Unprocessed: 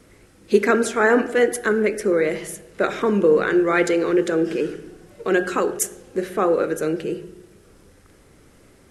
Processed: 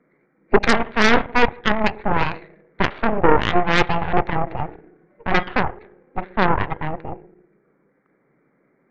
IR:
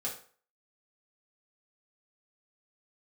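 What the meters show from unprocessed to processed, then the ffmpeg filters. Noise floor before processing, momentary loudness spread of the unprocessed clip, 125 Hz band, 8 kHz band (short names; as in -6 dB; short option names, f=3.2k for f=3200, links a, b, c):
-53 dBFS, 11 LU, +7.5 dB, under -10 dB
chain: -af "afftfilt=real='re*between(b*sr/4096,120,2400)':imag='im*between(b*sr/4096,120,2400)':win_size=4096:overlap=0.75,aeval=exprs='0.708*(cos(1*acos(clip(val(0)/0.708,-1,1)))-cos(1*PI/2))+0.224*(cos(6*acos(clip(val(0)/0.708,-1,1)))-cos(6*PI/2))+0.141*(cos(7*acos(clip(val(0)/0.708,-1,1)))-cos(7*PI/2))':c=same,volume=-1dB"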